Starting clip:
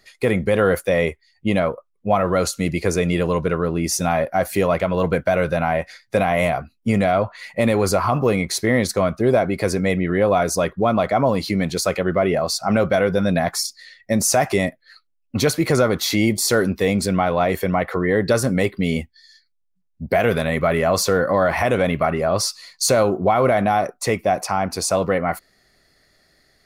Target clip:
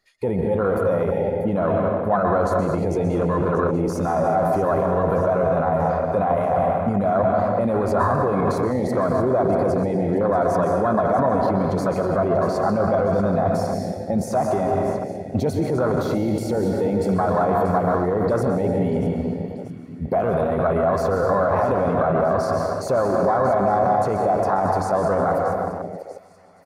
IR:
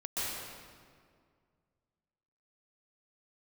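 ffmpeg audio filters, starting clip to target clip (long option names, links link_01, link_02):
-filter_complex "[0:a]asplit=2[link_01][link_02];[1:a]atrim=start_sample=2205[link_03];[link_02][link_03]afir=irnorm=-1:irlink=0,volume=-7dB[link_04];[link_01][link_04]amix=inputs=2:normalize=0,alimiter=limit=-13dB:level=0:latency=1:release=21,equalizer=frequency=1000:width_type=o:width=1.1:gain=5,asplit=2[link_05][link_06];[link_06]aecho=0:1:637|1274|1911|2548|3185|3822:0.224|0.132|0.0779|0.046|0.0271|0.016[link_07];[link_05][link_07]amix=inputs=2:normalize=0,afwtdn=0.0891"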